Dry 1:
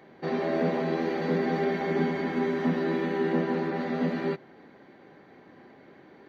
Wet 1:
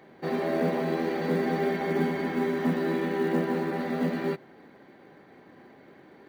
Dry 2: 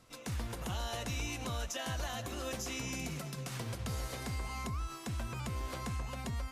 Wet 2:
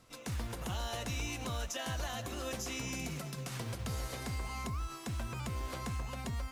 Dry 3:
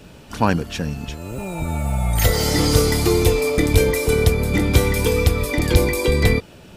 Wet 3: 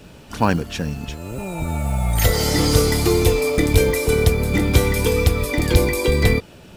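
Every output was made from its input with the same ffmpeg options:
-af "acrusher=bits=8:mode=log:mix=0:aa=0.000001"

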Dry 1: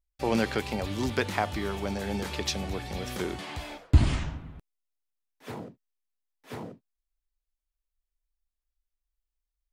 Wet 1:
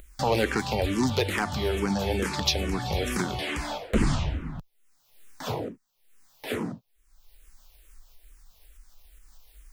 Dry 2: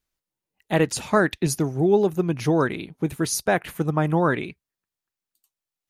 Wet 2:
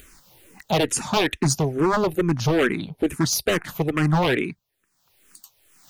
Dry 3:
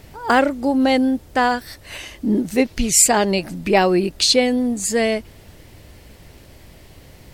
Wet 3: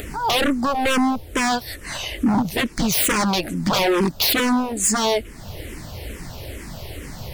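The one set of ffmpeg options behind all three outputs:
-filter_complex "[0:a]asplit=2[a][b];[b]acompressor=mode=upward:threshold=-22dB:ratio=2.5,volume=1dB[c];[a][c]amix=inputs=2:normalize=0,aeval=exprs='0.282*(abs(mod(val(0)/0.282+3,4)-2)-1)':c=same,asplit=2[d][e];[e]afreqshift=-2.3[f];[d][f]amix=inputs=2:normalize=1"

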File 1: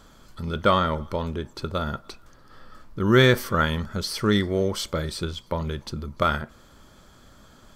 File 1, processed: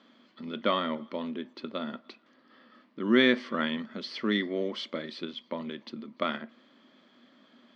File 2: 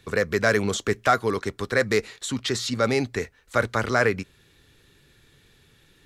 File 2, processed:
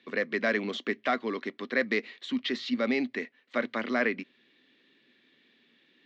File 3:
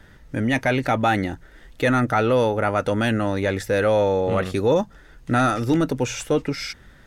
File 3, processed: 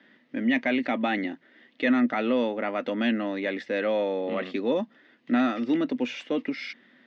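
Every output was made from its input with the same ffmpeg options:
-af "highpass=f=240:w=0.5412,highpass=f=240:w=1.3066,equalizer=f=240:t=q:w=4:g=10,equalizer=f=440:t=q:w=4:g=-5,equalizer=f=860:t=q:w=4:g=-6,equalizer=f=1.4k:t=q:w=4:g=-7,equalizer=f=2k:t=q:w=4:g=5,equalizer=f=3k:t=q:w=4:g=3,lowpass=f=4.1k:w=0.5412,lowpass=f=4.1k:w=1.3066,volume=-5dB"

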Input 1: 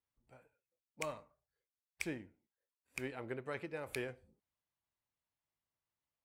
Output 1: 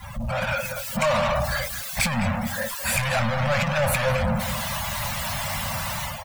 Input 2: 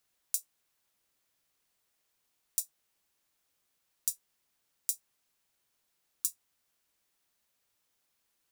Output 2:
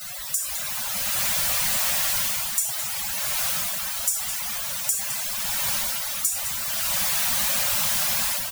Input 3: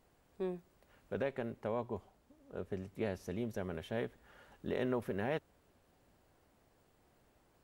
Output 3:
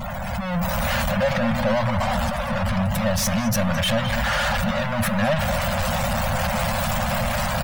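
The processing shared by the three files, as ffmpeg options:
-af "aeval=exprs='val(0)+0.5*0.075*sgn(val(0))':c=same,afftfilt=real='re*(1-between(b*sr/4096,240,510))':imag='im*(1-between(b*sr/4096,240,510))':win_size=4096:overlap=0.75,dynaudnorm=f=320:g=3:m=5.5dB,aecho=1:1:211:0.299,afftdn=nr=23:nf=-32,volume=2dB"

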